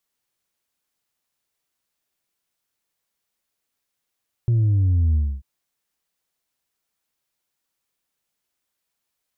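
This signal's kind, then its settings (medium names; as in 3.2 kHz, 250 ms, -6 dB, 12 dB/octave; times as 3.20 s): sub drop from 120 Hz, over 0.94 s, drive 2 dB, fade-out 0.27 s, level -15.5 dB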